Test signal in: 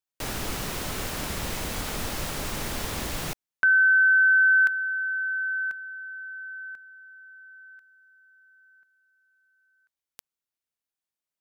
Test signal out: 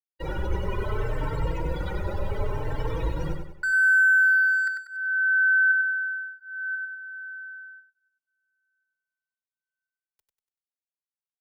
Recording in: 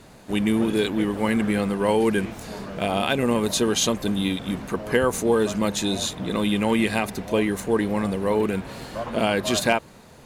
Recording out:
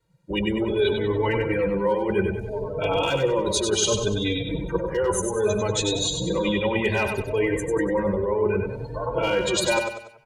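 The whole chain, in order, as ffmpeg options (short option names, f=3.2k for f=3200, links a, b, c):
-filter_complex "[0:a]afftdn=nr=33:nf=-31,acrossover=split=570|4800[a][b][c];[b]asoftclip=type=hard:threshold=-18dB[d];[a][d][c]amix=inputs=3:normalize=0,aecho=1:1:2.1:0.82,areverse,acompressor=threshold=-33dB:ratio=6:attack=58:release=38:knee=6:detection=peak,areverse,aecho=1:1:96|192|288|384|480:0.531|0.218|0.0892|0.0366|0.015,asplit=2[e][f];[f]adelay=3.9,afreqshift=0.65[g];[e][g]amix=inputs=2:normalize=1,volume=8dB"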